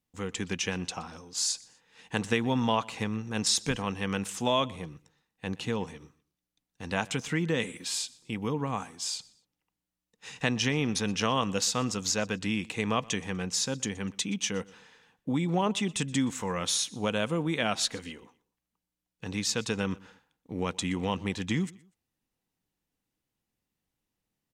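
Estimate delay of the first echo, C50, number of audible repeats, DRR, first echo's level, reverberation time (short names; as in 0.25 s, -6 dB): 0.122 s, none, 2, none, -23.0 dB, none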